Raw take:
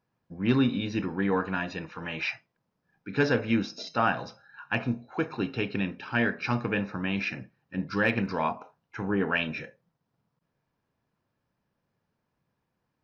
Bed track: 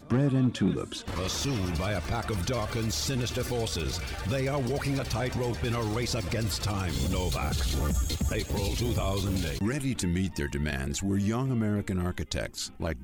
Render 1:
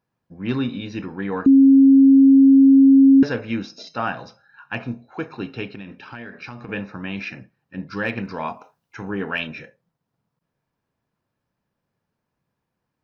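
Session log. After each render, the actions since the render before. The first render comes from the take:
0:01.46–0:03.23: beep over 271 Hz −7.5 dBFS
0:05.70–0:06.69: downward compressor 12 to 1, threshold −31 dBFS
0:08.47–0:09.46: high-shelf EQ 3,600 Hz → 4,800 Hz +11 dB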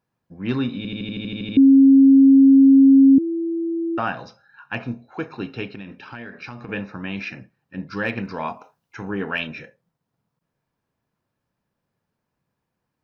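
0:00.77: stutter in place 0.08 s, 10 plays
0:03.18–0:03.98: beep over 333 Hz −21 dBFS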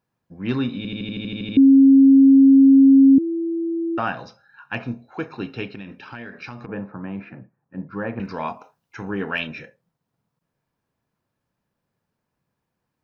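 0:06.66–0:08.20: Chebyshev band-pass filter 110–1,100 Hz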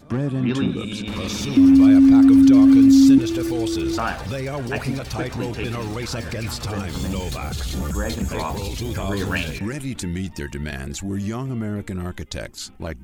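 mix in bed track +1.5 dB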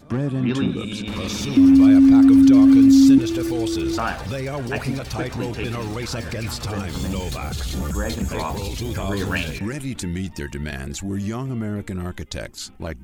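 no processing that can be heard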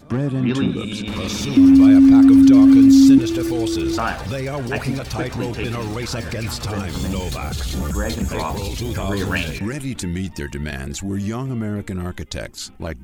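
level +2 dB

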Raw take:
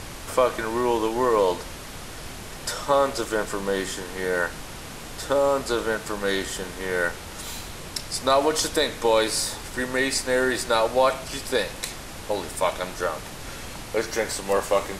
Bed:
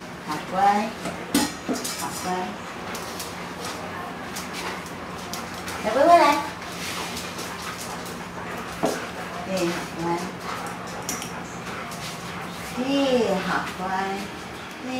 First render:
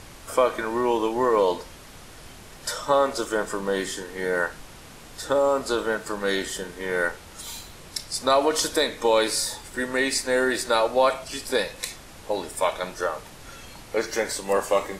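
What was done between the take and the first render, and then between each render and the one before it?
noise reduction from a noise print 7 dB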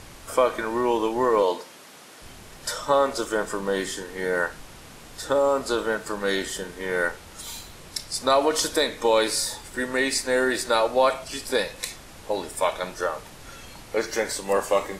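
0:01.42–0:02.22: Bessel high-pass filter 250 Hz, order 4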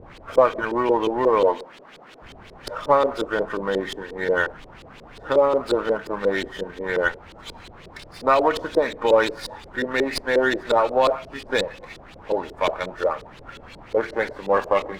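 auto-filter low-pass saw up 5.6 Hz 390–4,400 Hz
windowed peak hold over 3 samples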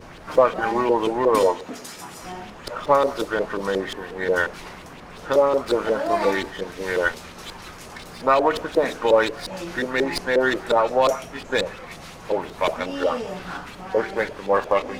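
mix in bed −9 dB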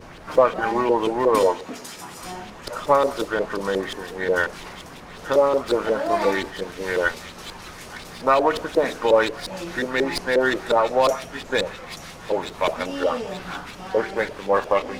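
delay with a high-pass on its return 882 ms, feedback 53%, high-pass 3,300 Hz, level −7 dB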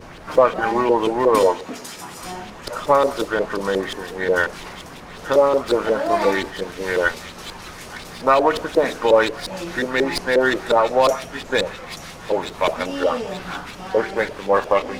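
level +2.5 dB
brickwall limiter −3 dBFS, peak gain reduction 1.5 dB

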